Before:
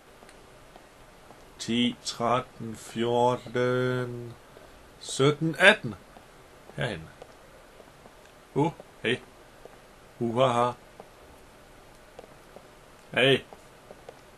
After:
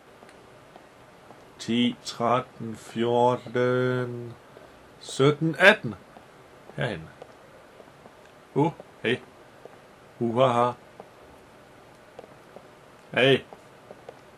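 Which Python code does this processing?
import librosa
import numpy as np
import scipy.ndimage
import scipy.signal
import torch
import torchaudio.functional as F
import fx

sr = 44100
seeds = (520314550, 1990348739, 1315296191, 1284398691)

y = fx.tracing_dist(x, sr, depth_ms=0.021)
y = scipy.signal.sosfilt(scipy.signal.butter(2, 82.0, 'highpass', fs=sr, output='sos'), y)
y = fx.high_shelf(y, sr, hz=3700.0, db=-7.0)
y = y * librosa.db_to_amplitude(2.5)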